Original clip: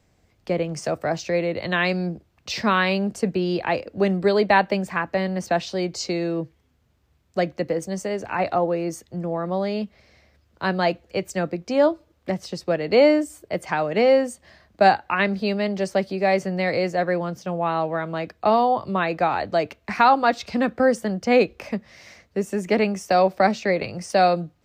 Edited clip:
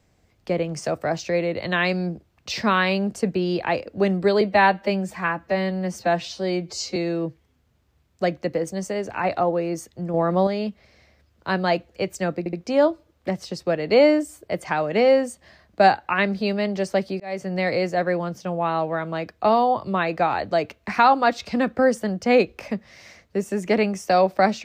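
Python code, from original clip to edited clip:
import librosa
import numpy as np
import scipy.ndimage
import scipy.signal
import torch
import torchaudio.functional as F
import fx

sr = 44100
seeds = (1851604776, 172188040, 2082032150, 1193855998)

y = fx.edit(x, sr, fx.stretch_span(start_s=4.41, length_s=1.7, factor=1.5),
    fx.clip_gain(start_s=9.29, length_s=0.33, db=5.5),
    fx.stutter(start_s=11.54, slice_s=0.07, count=3),
    fx.fade_in_span(start_s=16.21, length_s=0.36), tone=tone)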